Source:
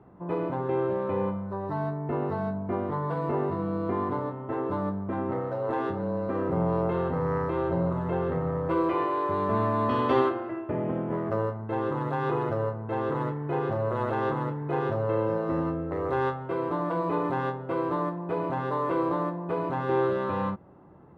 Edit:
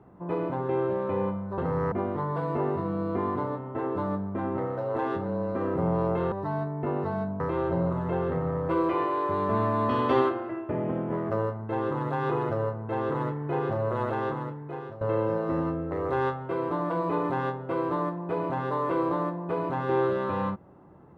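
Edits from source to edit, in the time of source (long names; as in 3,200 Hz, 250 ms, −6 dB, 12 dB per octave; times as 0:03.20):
0:01.58–0:02.66: swap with 0:07.06–0:07.40
0:14.00–0:15.01: fade out, to −16 dB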